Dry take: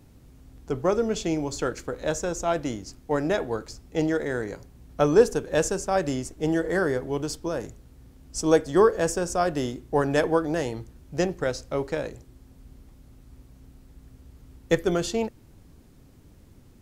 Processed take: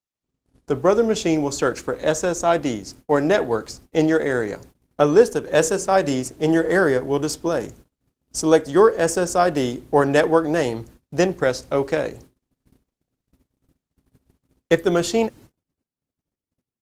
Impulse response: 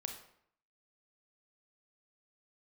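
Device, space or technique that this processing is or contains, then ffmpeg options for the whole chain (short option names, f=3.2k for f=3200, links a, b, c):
video call: -filter_complex "[0:a]asettb=1/sr,asplit=3[a][b][c];[a]atrim=end=5.524[d];[b]atrim=start=5.52:end=6.49,asetpts=PTS-STARTPTS,afade=t=in:d=0.004:c=qsin,afade=t=out:st=0.966:d=0.004:c=qsin,bandreject=f=60:t=h:w=6,bandreject=f=120:t=h:w=6,bandreject=f=180:t=h:w=6,bandreject=f=240:t=h:w=6,bandreject=f=300:t=h:w=6,bandreject=f=360:t=h:w=6,bandreject=f=420:t=h:w=6,bandreject=f=480:t=h:w=6,bandreject=f=540:t=h:w=6[e];[c]atrim=start=6.486[f];[d][e]acrossfade=d=0.004:c1=hsin:c2=qsin[g];[g][f]acrossfade=d=0.004:c1=qsin:c2=hsin,highpass=f=160:p=1,dynaudnorm=f=100:g=3:m=8dB,agate=range=-46dB:threshold=-43dB:ratio=16:detection=peak" -ar 48000 -c:a libopus -b:a 20k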